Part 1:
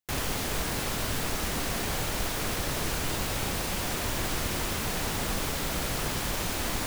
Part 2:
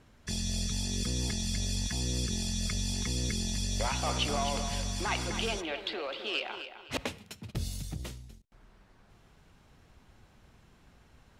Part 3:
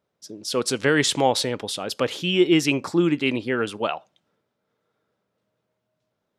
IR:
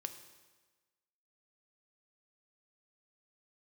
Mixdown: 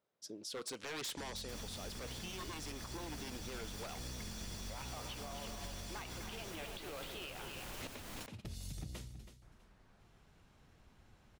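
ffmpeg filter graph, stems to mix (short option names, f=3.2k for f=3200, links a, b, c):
-filter_complex "[0:a]alimiter=limit=-23.5dB:level=0:latency=1:release=360,adelay=1400,volume=-12dB[a];[1:a]adelay=900,volume=-5.5dB,asplit=2[b][c];[c]volume=-13.5dB[d];[2:a]aeval=exprs='0.112*(abs(mod(val(0)/0.112+3,4)-2)-1)':c=same,lowshelf=f=210:g=-8.5,volume=-7.5dB[e];[b][e]amix=inputs=2:normalize=0,acompressor=threshold=-40dB:ratio=2.5,volume=0dB[f];[d]aecho=0:1:325|650|975|1300:1|0.22|0.0484|0.0106[g];[a][f][g]amix=inputs=3:normalize=0,alimiter=level_in=11dB:limit=-24dB:level=0:latency=1:release=240,volume=-11dB"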